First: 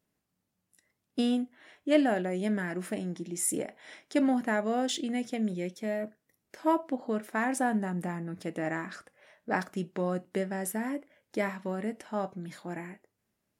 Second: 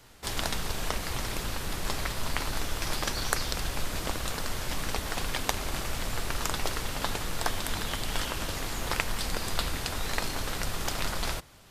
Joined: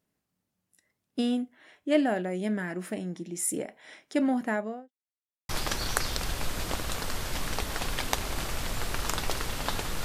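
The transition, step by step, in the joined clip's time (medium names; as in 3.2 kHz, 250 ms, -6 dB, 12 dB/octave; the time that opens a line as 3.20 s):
first
4.49–4.92 s: studio fade out
4.92–5.49 s: mute
5.49 s: go over to second from 2.85 s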